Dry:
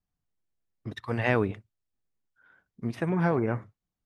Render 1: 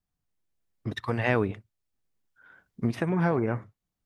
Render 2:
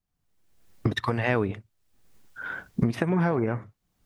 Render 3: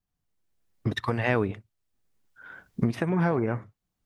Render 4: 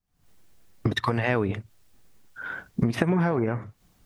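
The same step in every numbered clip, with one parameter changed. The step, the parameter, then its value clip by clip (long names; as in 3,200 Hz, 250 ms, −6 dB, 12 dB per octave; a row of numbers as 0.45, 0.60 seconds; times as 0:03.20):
camcorder AGC, rising by: 5.2, 36, 14, 91 dB per second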